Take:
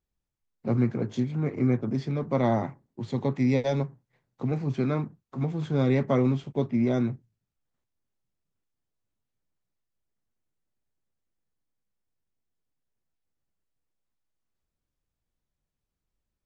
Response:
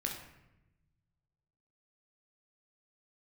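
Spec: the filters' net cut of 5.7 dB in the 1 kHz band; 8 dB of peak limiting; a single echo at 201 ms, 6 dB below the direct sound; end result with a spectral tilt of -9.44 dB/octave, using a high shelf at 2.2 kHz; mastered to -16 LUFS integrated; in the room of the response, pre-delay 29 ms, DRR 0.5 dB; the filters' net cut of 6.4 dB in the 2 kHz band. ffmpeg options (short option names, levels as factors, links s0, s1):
-filter_complex "[0:a]equalizer=f=1000:t=o:g=-7.5,equalizer=f=2000:t=o:g=-8.5,highshelf=f=2200:g=5.5,alimiter=limit=0.0841:level=0:latency=1,aecho=1:1:201:0.501,asplit=2[s0][s1];[1:a]atrim=start_sample=2205,adelay=29[s2];[s1][s2]afir=irnorm=-1:irlink=0,volume=0.75[s3];[s0][s3]amix=inputs=2:normalize=0,volume=3.35"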